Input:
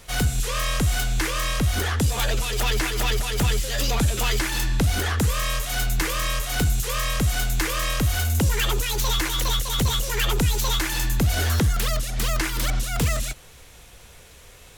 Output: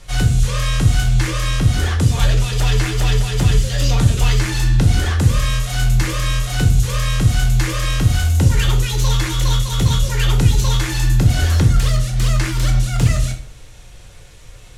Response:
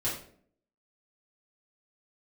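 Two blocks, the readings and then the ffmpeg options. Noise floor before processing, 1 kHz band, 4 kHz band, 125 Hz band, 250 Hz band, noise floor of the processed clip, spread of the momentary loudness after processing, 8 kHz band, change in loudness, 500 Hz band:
-47 dBFS, +1.5 dB, +2.0 dB, +10.5 dB, +6.0 dB, -39 dBFS, 3 LU, +1.5 dB, +6.5 dB, +2.0 dB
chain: -filter_complex "[0:a]lowpass=9000,asplit=2[s0][s1];[s1]bass=f=250:g=7,treble=f=4000:g=5[s2];[1:a]atrim=start_sample=2205[s3];[s2][s3]afir=irnorm=-1:irlink=0,volume=0.422[s4];[s0][s4]amix=inputs=2:normalize=0,volume=0.794"

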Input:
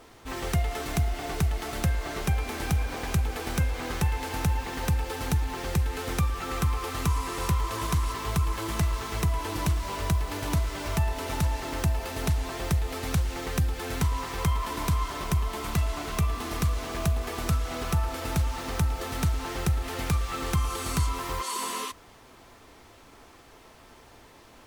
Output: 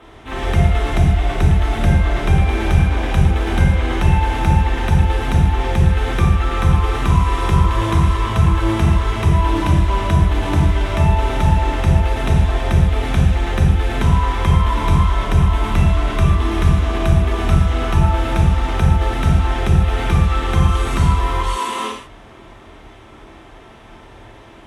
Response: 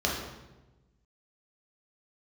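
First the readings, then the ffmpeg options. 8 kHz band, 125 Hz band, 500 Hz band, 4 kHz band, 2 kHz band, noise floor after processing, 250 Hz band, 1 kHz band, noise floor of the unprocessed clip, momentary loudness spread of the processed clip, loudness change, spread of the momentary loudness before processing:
0.0 dB, +13.5 dB, +11.0 dB, +7.5 dB, +10.0 dB, -42 dBFS, +12.5 dB, +11.5 dB, -53 dBFS, 1 LU, +12.5 dB, 2 LU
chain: -filter_complex "[1:a]atrim=start_sample=2205,atrim=end_sample=3969,asetrate=23814,aresample=44100[s0];[0:a][s0]afir=irnorm=-1:irlink=0,volume=0.596"

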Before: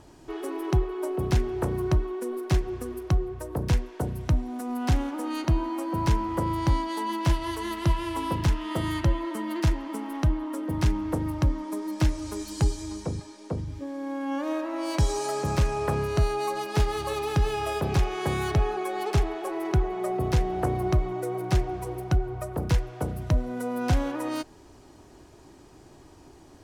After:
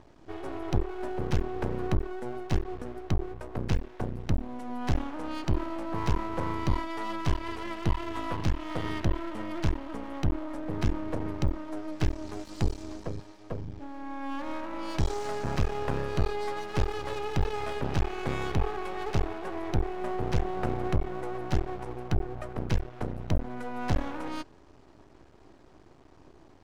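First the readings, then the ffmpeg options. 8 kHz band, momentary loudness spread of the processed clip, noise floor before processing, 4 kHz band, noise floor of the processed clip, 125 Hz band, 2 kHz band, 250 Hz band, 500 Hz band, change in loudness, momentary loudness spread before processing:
-9.5 dB, 8 LU, -51 dBFS, -5.0 dB, -55 dBFS, -5.0 dB, -3.0 dB, -4.5 dB, -4.5 dB, -5.0 dB, 7 LU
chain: -af "adynamicsmooth=sensitivity=3:basefreq=4600,aeval=exprs='max(val(0),0)':c=same"

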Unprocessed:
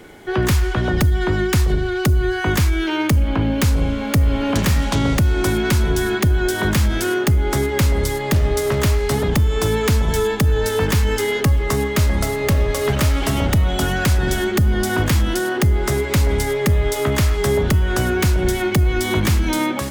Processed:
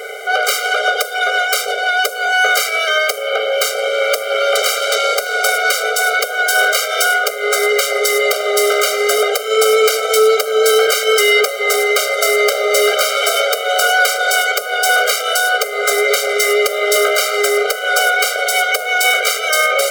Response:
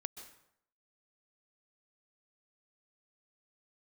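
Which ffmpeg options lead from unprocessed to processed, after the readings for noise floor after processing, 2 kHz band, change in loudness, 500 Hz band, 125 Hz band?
-23 dBFS, +11.5 dB, +4.5 dB, +6.5 dB, under -40 dB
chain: -af "apsyclip=16.8,afftfilt=real='re*eq(mod(floor(b*sr/1024/400),2),1)':imag='im*eq(mod(floor(b*sr/1024/400),2),1)':win_size=1024:overlap=0.75,volume=0.501"

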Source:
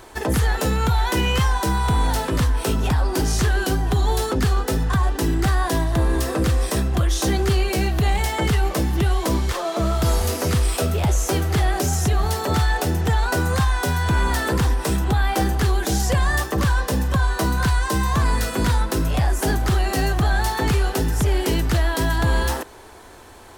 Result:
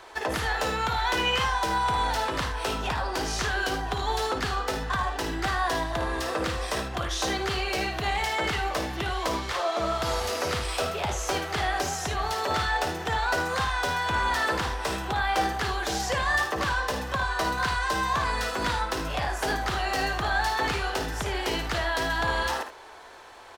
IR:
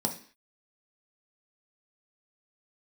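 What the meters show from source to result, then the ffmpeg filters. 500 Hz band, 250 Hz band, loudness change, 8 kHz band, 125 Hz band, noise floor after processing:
-5.0 dB, -11.0 dB, -6.0 dB, -7.0 dB, -15.0 dB, -35 dBFS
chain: -filter_complex "[0:a]acrossover=split=480 5900:gain=0.178 1 0.224[s0][s1][s2];[s0][s1][s2]amix=inputs=3:normalize=0,aecho=1:1:55|77:0.355|0.266,volume=0.891"

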